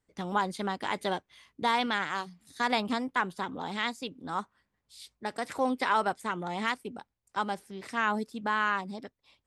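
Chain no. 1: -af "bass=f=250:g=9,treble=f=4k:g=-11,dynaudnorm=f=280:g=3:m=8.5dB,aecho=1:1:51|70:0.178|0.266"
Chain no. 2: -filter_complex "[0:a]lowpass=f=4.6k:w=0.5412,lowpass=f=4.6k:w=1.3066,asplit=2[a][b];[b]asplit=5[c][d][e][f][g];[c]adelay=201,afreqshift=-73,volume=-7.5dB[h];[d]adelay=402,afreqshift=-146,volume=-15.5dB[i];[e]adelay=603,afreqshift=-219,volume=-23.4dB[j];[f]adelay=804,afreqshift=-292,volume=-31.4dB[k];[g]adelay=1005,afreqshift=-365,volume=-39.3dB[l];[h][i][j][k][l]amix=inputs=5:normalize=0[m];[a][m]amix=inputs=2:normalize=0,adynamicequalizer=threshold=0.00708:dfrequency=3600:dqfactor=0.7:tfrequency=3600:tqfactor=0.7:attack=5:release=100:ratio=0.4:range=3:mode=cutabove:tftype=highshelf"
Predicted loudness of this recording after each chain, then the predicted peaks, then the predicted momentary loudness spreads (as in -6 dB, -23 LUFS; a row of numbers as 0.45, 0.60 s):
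-22.0, -31.0 LUFS; -6.0, -14.0 dBFS; 11, 11 LU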